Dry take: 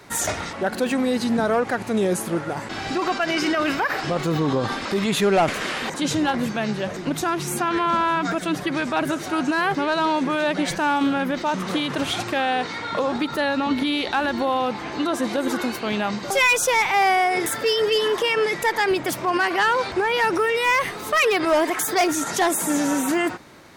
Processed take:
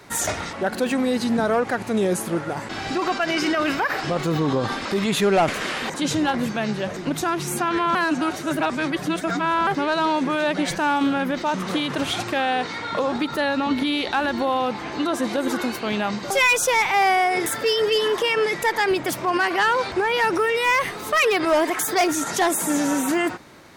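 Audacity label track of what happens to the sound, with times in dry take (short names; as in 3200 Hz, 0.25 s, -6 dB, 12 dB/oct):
7.950000	9.670000	reverse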